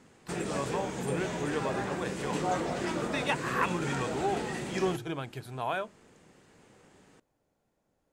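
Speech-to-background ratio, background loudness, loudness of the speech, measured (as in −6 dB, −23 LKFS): 0.0 dB, −35.0 LKFS, −35.0 LKFS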